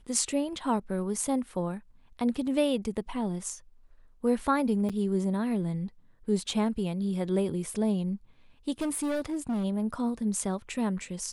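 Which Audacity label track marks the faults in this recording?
4.890000	4.900000	dropout 6.5 ms
8.810000	9.650000	clipped -26.5 dBFS

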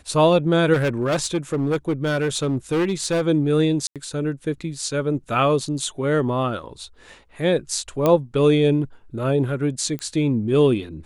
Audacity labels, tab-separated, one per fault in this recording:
0.730000	3.220000	clipped -17 dBFS
3.870000	3.960000	dropout 87 ms
8.060000	8.060000	pop -7 dBFS
9.990000	9.990000	pop -17 dBFS

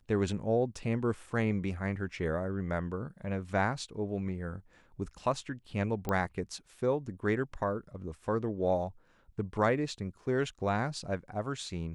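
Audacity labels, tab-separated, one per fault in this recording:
6.090000	6.090000	pop -19 dBFS

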